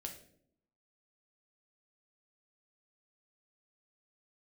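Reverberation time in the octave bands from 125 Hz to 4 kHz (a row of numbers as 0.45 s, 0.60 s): 0.85 s, 0.95 s, 0.80 s, 0.55 s, 0.50 s, 0.45 s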